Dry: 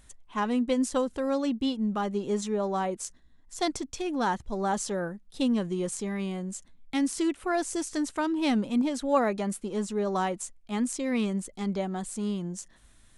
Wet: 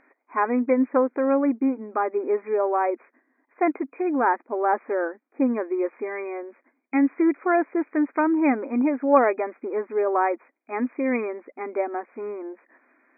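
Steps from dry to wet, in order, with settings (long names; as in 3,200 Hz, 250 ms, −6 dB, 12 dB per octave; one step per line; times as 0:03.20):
linear-phase brick-wall band-pass 240–2,500 Hz
level +7 dB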